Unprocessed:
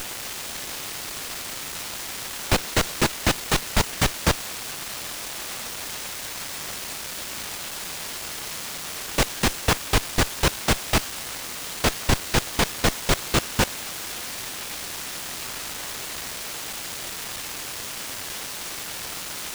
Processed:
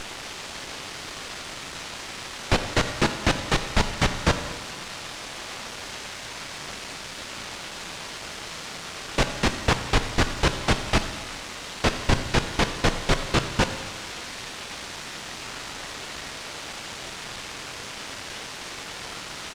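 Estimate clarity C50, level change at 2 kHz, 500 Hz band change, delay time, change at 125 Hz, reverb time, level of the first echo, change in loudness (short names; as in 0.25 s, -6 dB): 9.5 dB, 0.0 dB, +0.5 dB, 88 ms, +0.5 dB, 1.5 s, -18.0 dB, -2.0 dB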